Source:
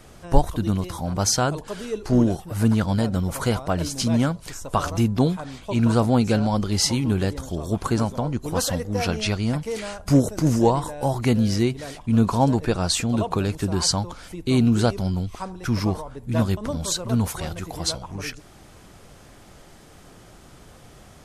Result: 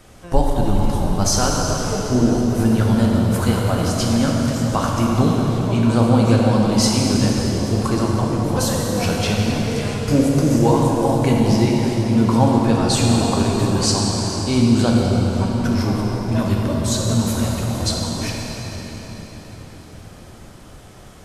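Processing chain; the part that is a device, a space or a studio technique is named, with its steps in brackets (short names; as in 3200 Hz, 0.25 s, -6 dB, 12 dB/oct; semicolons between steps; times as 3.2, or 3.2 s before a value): cathedral (reverb RT60 5.0 s, pre-delay 3 ms, DRR -2.5 dB)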